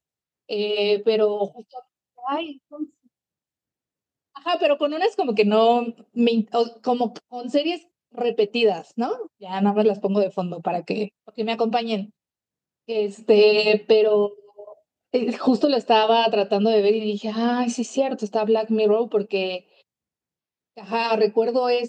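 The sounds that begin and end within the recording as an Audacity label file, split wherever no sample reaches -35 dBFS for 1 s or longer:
4.360000	19.580000	sound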